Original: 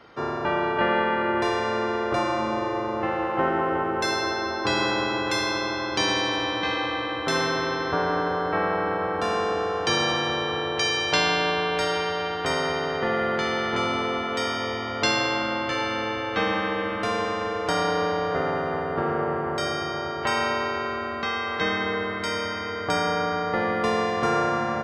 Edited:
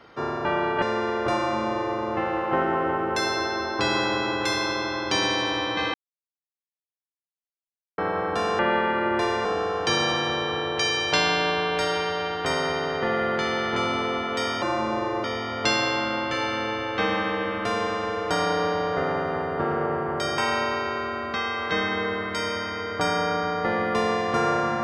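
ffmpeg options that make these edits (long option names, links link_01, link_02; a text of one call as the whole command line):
ffmpeg -i in.wav -filter_complex "[0:a]asplit=9[link_01][link_02][link_03][link_04][link_05][link_06][link_07][link_08][link_09];[link_01]atrim=end=0.822[link_10];[link_02]atrim=start=1.678:end=6.8,asetpts=PTS-STARTPTS,afade=type=out:start_time=5.118:duration=0.004:curve=hsin[link_11];[link_03]atrim=start=6.8:end=8.84,asetpts=PTS-STARTPTS,volume=0[link_12];[link_04]atrim=start=8.84:end=9.452,asetpts=PTS-STARTPTS,afade=type=in:duration=0.004:curve=hsin[link_13];[link_05]atrim=start=0.818:end=1.682[link_14];[link_06]atrim=start=9.448:end=14.622[link_15];[link_07]atrim=start=2.218:end=2.842[link_16];[link_08]atrim=start=14.618:end=19.762[link_17];[link_09]atrim=start=20.268[link_18];[link_11][link_12][link_13]concat=n=3:v=0:a=1[link_19];[link_10][link_19]acrossfade=duration=0.004:curve1=hsin:curve2=hsin[link_20];[link_20][link_14]acrossfade=duration=0.004:curve1=hsin:curve2=hsin[link_21];[link_21][link_15]acrossfade=duration=0.004:curve1=hsin:curve2=hsin[link_22];[link_22][link_16]acrossfade=duration=0.004:curve1=hsin:curve2=hsin[link_23];[link_23][link_17]acrossfade=duration=0.004:curve1=hsin:curve2=hsin[link_24];[link_24][link_18]acrossfade=duration=0.004:curve1=hsin:curve2=hsin" out.wav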